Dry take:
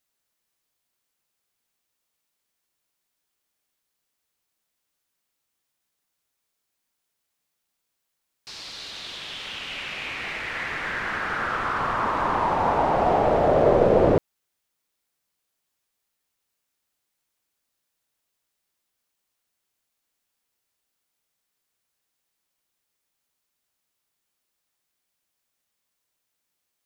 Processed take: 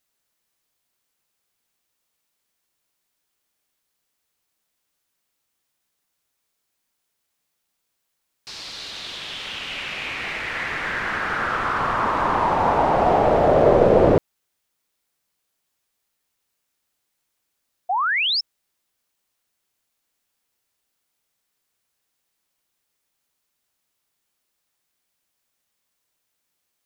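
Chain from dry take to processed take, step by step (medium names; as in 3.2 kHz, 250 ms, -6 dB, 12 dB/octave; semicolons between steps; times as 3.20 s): painted sound rise, 17.89–18.41 s, 690–5500 Hz -24 dBFS; trim +3 dB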